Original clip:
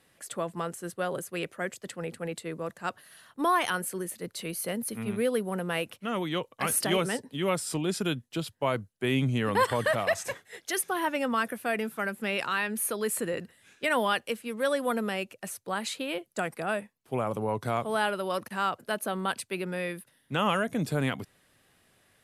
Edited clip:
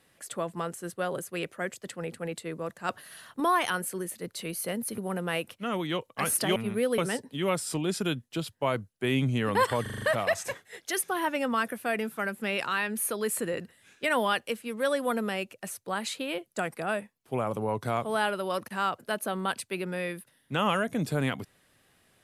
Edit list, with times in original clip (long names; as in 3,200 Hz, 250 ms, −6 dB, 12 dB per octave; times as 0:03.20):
0:02.89–0:03.40: clip gain +5.5 dB
0:04.98–0:05.40: move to 0:06.98
0:09.82: stutter 0.04 s, 6 plays